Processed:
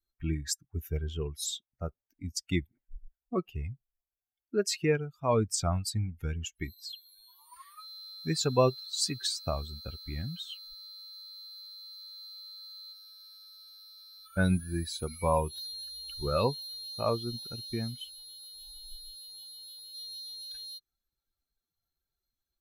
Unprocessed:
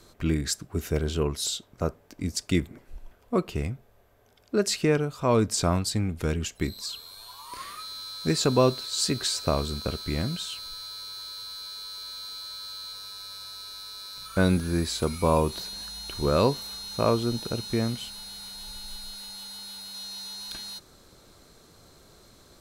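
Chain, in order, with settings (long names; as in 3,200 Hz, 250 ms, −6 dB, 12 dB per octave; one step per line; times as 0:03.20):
spectral dynamics exaggerated over time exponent 2
dynamic equaliser 260 Hz, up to −5 dB, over −40 dBFS, Q 1.9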